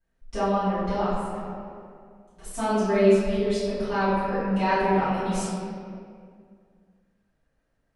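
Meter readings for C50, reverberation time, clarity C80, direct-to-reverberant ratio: −3.5 dB, 2.3 s, −0.5 dB, −19.5 dB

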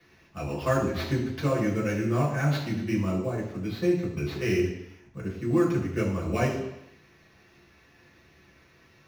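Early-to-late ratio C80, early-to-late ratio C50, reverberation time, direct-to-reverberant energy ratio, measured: 8.0 dB, 5.0 dB, 0.80 s, −7.0 dB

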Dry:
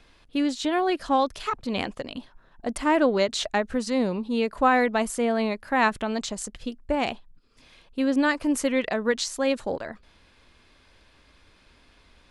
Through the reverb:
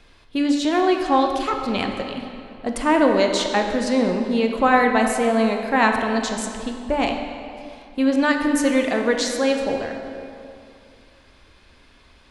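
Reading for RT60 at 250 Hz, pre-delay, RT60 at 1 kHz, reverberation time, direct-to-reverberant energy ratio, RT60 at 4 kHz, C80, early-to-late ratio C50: 2.7 s, 6 ms, 2.5 s, 2.5 s, 3.0 dB, 1.8 s, 5.5 dB, 4.5 dB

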